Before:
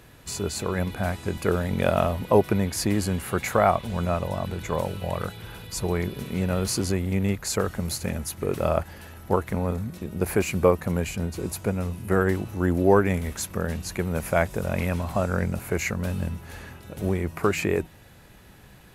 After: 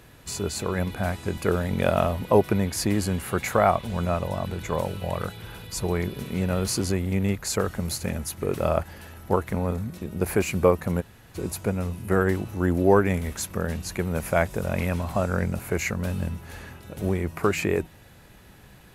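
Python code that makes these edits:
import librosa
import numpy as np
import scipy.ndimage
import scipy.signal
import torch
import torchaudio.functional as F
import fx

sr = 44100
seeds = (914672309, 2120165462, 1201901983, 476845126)

y = fx.edit(x, sr, fx.room_tone_fill(start_s=11.01, length_s=0.34, crossfade_s=0.02), tone=tone)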